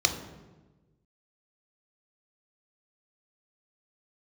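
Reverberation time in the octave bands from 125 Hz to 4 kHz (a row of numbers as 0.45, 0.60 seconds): 1.7, 1.5, 1.4, 1.1, 0.95, 0.80 seconds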